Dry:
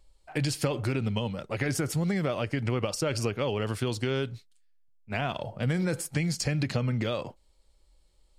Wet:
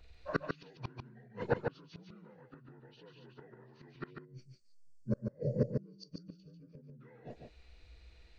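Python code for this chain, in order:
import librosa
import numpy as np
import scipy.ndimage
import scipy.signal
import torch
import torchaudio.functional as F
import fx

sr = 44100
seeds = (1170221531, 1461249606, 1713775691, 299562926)

p1 = fx.partial_stretch(x, sr, pct=80)
p2 = fx.gate_flip(p1, sr, shuts_db=-25.0, range_db=-35)
p3 = fx.spec_box(p2, sr, start_s=4.1, length_s=2.91, low_hz=630.0, high_hz=4300.0, gain_db=-21)
p4 = p3 + fx.echo_single(p3, sr, ms=145, db=-5.0, dry=0)
y = p4 * librosa.db_to_amplitude(7.5)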